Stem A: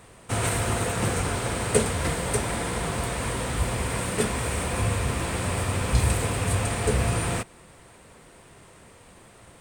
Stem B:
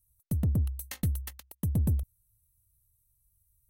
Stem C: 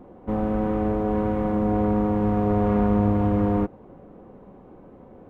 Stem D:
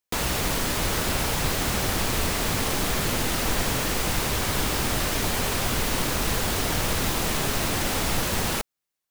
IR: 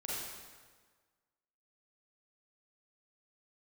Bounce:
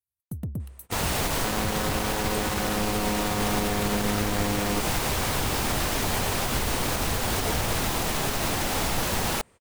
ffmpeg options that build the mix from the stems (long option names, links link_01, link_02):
-filter_complex "[0:a]adelay=600,volume=-10dB[link_01];[1:a]highpass=95,volume=-3dB[link_02];[2:a]lowpass=frequency=1800:width=0.5412,lowpass=frequency=1800:width=1.3066,acrusher=bits=4:dc=4:mix=0:aa=0.000001,adelay=1150,volume=-4dB[link_03];[3:a]equalizer=frequency=800:width_type=o:width=0.74:gain=3.5,adelay=800,volume=-1dB[link_04];[link_01][link_02][link_03][link_04]amix=inputs=4:normalize=0,agate=range=-18dB:threshold=-46dB:ratio=16:detection=peak,alimiter=limit=-15.5dB:level=0:latency=1:release=83"